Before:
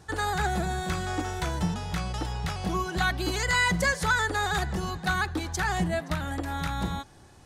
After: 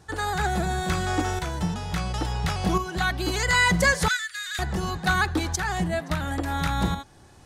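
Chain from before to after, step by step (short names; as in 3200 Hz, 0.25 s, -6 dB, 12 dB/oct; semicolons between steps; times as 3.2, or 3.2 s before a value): tremolo saw up 0.72 Hz, depth 55%; 4.08–4.59 inverse Chebyshev high-pass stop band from 860 Hz, stop band 40 dB; gain +6 dB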